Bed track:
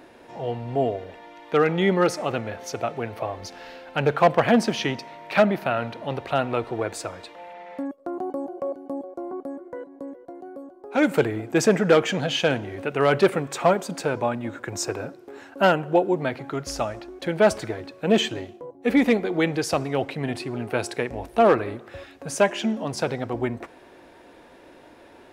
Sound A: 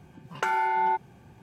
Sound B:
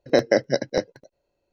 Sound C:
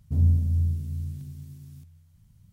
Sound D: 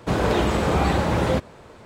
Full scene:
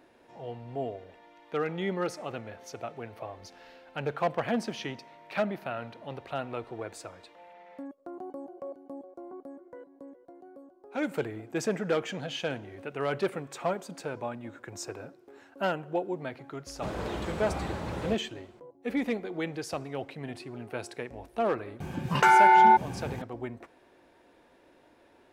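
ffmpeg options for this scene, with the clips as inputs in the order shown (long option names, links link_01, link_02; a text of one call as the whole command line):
ffmpeg -i bed.wav -i cue0.wav -i cue1.wav -i cue2.wav -i cue3.wav -filter_complex "[0:a]volume=-11dB[link_01];[1:a]alimiter=level_in=24.5dB:limit=-1dB:release=50:level=0:latency=1[link_02];[4:a]atrim=end=1.85,asetpts=PTS-STARTPTS,volume=-14dB,afade=type=in:duration=0.004:curve=hsin,afade=type=out:start_time=1.846:duration=0.004:curve=hsin,adelay=16750[link_03];[link_02]atrim=end=1.42,asetpts=PTS-STARTPTS,volume=-10dB,afade=type=in:duration=0.004:curve=hsin,afade=type=out:start_time=1.416:duration=0.004:curve=hsin,adelay=961380S[link_04];[link_01][link_03][link_04]amix=inputs=3:normalize=0" out.wav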